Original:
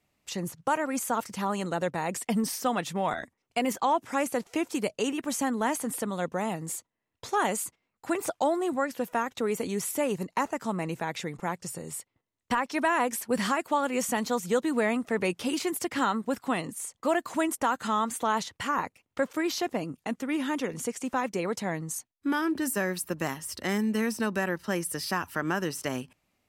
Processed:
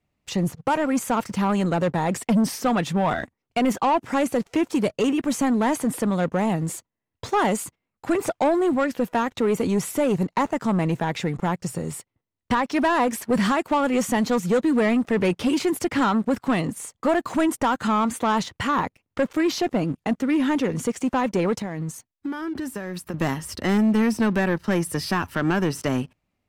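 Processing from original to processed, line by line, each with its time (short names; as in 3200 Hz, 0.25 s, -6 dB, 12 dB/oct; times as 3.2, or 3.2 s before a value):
21.58–23.14 compressor 10:1, threshold -36 dBFS
whole clip: low shelf 220 Hz +8 dB; sample leveller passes 2; high shelf 5400 Hz -9 dB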